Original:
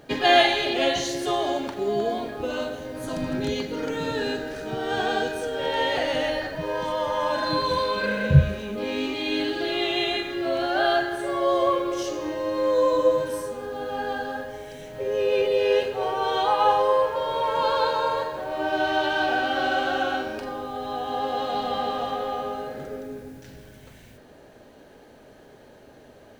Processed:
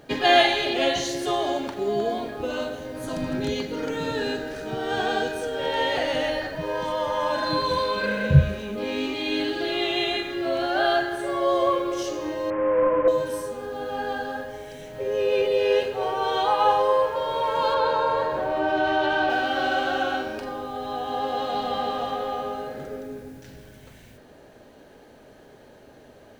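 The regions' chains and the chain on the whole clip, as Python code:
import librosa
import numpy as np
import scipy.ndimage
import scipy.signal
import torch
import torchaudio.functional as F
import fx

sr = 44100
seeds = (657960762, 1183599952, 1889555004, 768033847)

y = fx.chain(x, sr, fx.delta_mod(bps=16000, step_db=-27.0),
    fx.lowpass(hz=1900.0, slope=24), at=(12.5, 13.08))
y = fx.chain(y, sr, fx.high_shelf(hz=3800.0, db=-11.0),
    fx.env_flatten(amount_pct=50), at=(17.74, 19.3))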